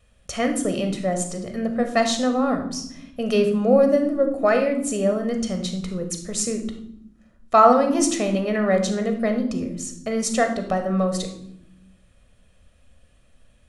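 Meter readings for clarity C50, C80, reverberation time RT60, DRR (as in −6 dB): 8.0 dB, 12.0 dB, 0.80 s, 5.0 dB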